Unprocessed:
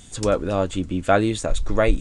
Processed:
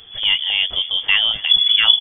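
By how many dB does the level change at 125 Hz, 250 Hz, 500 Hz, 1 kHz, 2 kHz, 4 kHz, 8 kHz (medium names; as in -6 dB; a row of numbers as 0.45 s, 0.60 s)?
under -20 dB, under -25 dB, -23.5 dB, -8.5 dB, +10.0 dB, +25.5 dB, under -40 dB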